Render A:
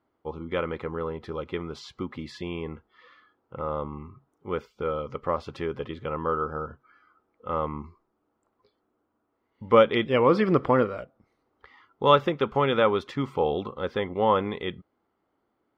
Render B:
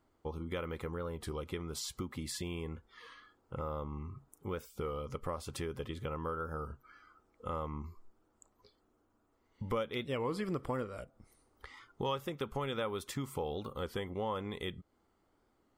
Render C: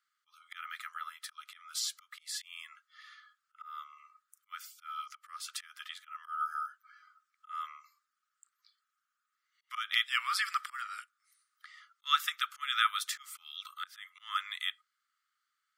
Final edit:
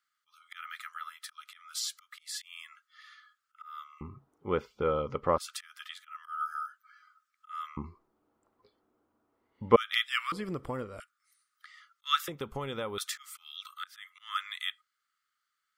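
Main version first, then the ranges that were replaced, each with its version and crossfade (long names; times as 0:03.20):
C
0:04.01–0:05.38: punch in from A
0:07.77–0:09.76: punch in from A
0:10.32–0:11.00: punch in from B
0:12.28–0:12.98: punch in from B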